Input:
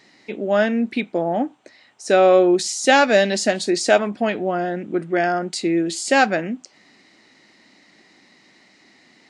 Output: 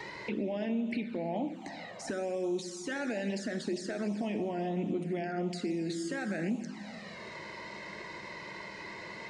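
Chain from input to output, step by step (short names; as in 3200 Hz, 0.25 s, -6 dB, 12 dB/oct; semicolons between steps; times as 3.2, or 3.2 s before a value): compressor 4:1, threshold -27 dBFS, peak gain reduction 14.5 dB; limiter -27 dBFS, peak gain reduction 11.5 dB; tone controls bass +4 dB, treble -5 dB; plate-style reverb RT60 2 s, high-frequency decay 0.8×, DRR 7 dB; envelope flanger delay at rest 2.3 ms, full sweep at -28 dBFS; bell 950 Hz +7.5 dB 0.29 oct; three-band squash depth 70%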